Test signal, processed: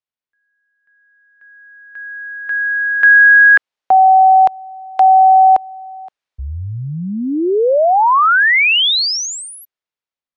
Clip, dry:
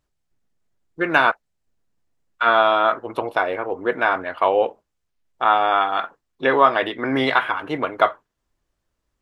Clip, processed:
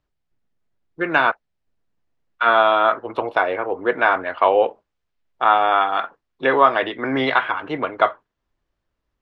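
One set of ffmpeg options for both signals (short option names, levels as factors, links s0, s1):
-filter_complex "[0:a]lowpass=4200,acrossover=split=350[s0][s1];[s1]dynaudnorm=f=750:g=5:m=5.01[s2];[s0][s2]amix=inputs=2:normalize=0,volume=0.891"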